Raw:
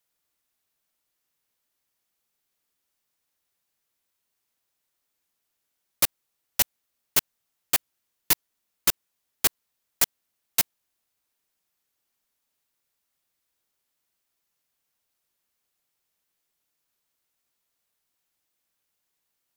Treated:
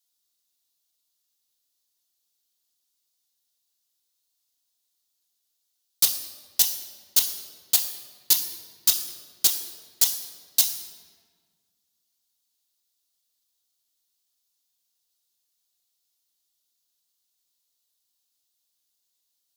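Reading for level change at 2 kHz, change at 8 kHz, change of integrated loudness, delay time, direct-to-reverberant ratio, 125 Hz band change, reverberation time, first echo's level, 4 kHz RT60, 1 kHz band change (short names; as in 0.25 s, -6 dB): -8.5 dB, +4.5 dB, +2.5 dB, none, 2.0 dB, n/a, 1.6 s, none, 1.1 s, -8.5 dB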